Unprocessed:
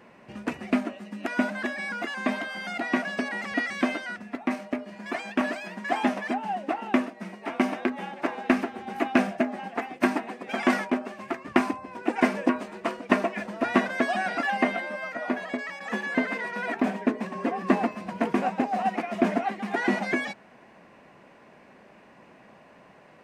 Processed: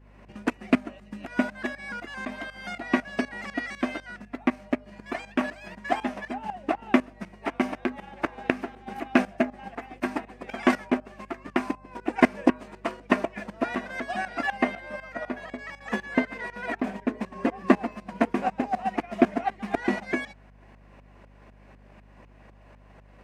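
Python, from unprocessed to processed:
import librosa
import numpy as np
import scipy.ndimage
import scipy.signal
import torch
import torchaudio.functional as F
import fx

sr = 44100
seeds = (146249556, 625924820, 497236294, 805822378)

y = fx.transient(x, sr, attack_db=5, sustain_db=-3)
y = fx.tremolo_shape(y, sr, shape='saw_up', hz=4.0, depth_pct=85)
y = fx.add_hum(y, sr, base_hz=50, snr_db=24)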